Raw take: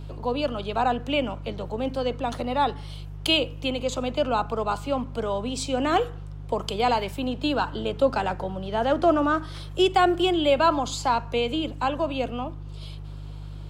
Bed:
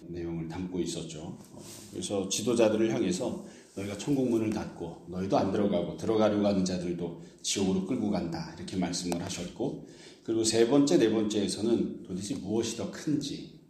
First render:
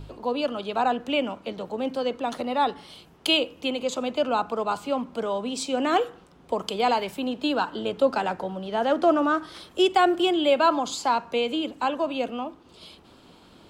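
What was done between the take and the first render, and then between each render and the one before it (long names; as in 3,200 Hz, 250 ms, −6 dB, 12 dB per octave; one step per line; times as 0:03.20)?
hum removal 50 Hz, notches 3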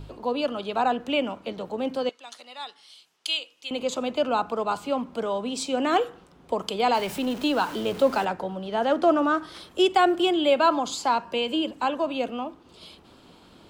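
0:02.09–0:03.71: resonant band-pass 6,100 Hz, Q 0.85
0:06.94–0:08.25: converter with a step at zero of −34.5 dBFS
0:11.23–0:11.73: EQ curve with evenly spaced ripples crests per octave 1.3, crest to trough 7 dB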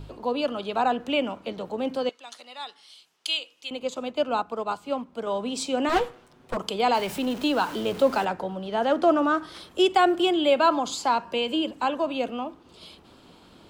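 0:03.70–0:05.27: expander for the loud parts, over −38 dBFS
0:05.89–0:06.57: lower of the sound and its delayed copy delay 8 ms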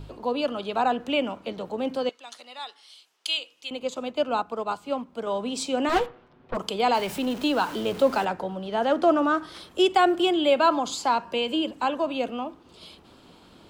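0:02.59–0:03.38: high-pass filter 320 Hz
0:06.06–0:06.55: high-frequency loss of the air 260 metres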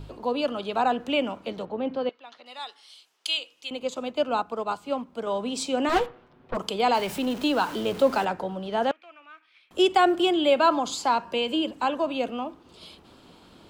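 0:01.65–0:02.46: high-frequency loss of the air 270 metres
0:08.91–0:09.71: resonant band-pass 2,400 Hz, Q 11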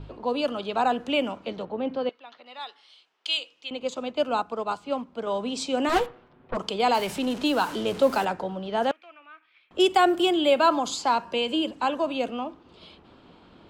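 low-pass that shuts in the quiet parts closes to 2,700 Hz, open at −20 dBFS
high-shelf EQ 9,800 Hz +9 dB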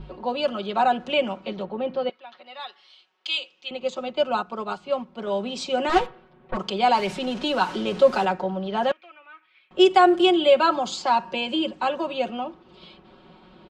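low-pass filter 5,800 Hz 12 dB per octave
comb filter 5.4 ms, depth 77%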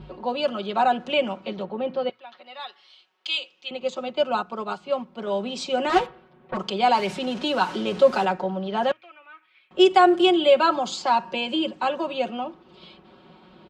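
high-pass filter 55 Hz
mains-hum notches 60/120 Hz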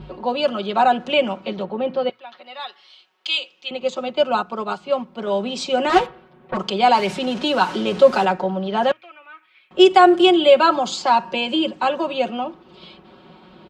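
level +4.5 dB
brickwall limiter −1 dBFS, peak gain reduction 0.5 dB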